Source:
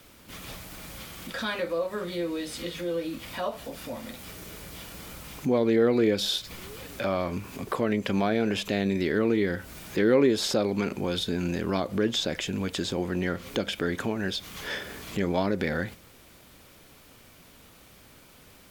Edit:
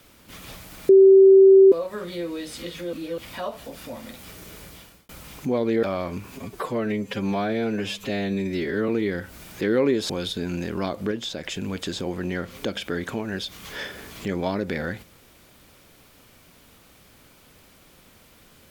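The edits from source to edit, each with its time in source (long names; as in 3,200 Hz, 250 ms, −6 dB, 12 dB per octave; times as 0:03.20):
0:00.89–0:01.72: beep over 386 Hz −8 dBFS
0:02.93–0:03.18: reverse
0:04.64–0:05.09: fade out
0:05.83–0:07.03: remove
0:07.55–0:09.24: time-stretch 1.5×
0:10.45–0:11.01: remove
0:12.03–0:12.36: clip gain −4 dB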